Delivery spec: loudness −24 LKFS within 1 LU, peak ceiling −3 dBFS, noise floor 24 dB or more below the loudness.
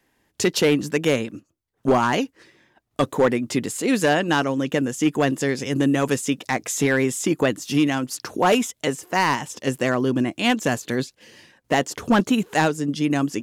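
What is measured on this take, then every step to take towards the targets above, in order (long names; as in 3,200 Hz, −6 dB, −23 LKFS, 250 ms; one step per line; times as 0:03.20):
share of clipped samples 0.6%; peaks flattened at −11.0 dBFS; integrated loudness −22.0 LKFS; sample peak −11.0 dBFS; target loudness −24.0 LKFS
→ clipped peaks rebuilt −11 dBFS
level −2 dB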